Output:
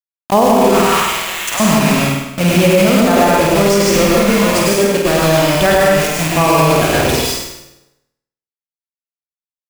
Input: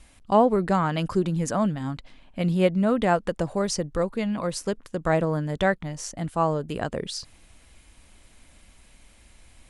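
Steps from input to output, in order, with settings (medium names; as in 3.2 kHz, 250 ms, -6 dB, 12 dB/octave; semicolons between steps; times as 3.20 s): rattle on loud lows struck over -34 dBFS, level -25 dBFS; 0.64–1.60 s: high-pass 1.2 kHz 12 dB/octave; 4.97–5.60 s: compression 3:1, threshold -27 dBFS, peak gain reduction 8 dB; bit crusher 5-bit; flutter echo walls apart 8.6 m, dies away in 0.69 s; reverberation RT60 0.90 s, pre-delay 93 ms, DRR -3.5 dB; loudness maximiser +10 dB; trim -1 dB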